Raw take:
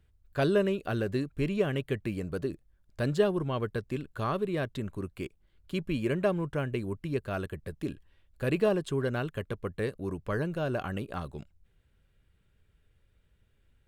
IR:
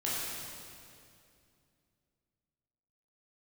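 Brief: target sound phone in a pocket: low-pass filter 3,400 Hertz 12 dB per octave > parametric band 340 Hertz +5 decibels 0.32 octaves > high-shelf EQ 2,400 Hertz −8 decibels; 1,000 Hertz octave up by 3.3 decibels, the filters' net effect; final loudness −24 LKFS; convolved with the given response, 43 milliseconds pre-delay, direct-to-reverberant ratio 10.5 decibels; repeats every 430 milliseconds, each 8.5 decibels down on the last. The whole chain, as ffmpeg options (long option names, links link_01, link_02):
-filter_complex "[0:a]equalizer=frequency=1000:width_type=o:gain=6,aecho=1:1:430|860|1290|1720:0.376|0.143|0.0543|0.0206,asplit=2[link_01][link_02];[1:a]atrim=start_sample=2205,adelay=43[link_03];[link_02][link_03]afir=irnorm=-1:irlink=0,volume=-17dB[link_04];[link_01][link_04]amix=inputs=2:normalize=0,lowpass=3400,equalizer=frequency=340:width_type=o:width=0.32:gain=5,highshelf=frequency=2400:gain=-8,volume=5.5dB"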